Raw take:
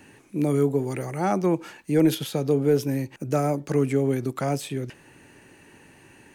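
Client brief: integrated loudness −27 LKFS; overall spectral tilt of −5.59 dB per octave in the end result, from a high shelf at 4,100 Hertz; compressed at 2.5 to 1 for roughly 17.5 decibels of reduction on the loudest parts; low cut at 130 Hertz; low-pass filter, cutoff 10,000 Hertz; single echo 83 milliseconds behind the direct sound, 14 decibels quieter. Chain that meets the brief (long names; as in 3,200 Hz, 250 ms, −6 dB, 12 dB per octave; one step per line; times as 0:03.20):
high-pass filter 130 Hz
low-pass filter 10,000 Hz
high-shelf EQ 4,100 Hz +5 dB
downward compressor 2.5 to 1, threshold −43 dBFS
single-tap delay 83 ms −14 dB
level +13.5 dB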